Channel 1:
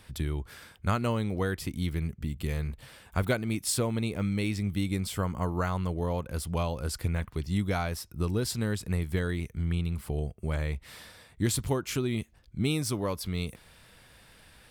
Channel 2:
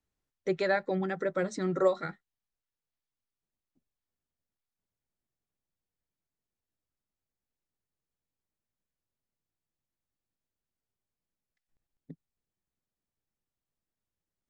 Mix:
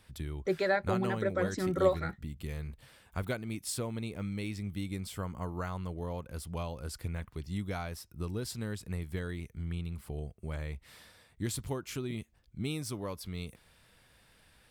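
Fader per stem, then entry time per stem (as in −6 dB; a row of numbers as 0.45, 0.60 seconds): −7.5, −1.0 decibels; 0.00, 0.00 seconds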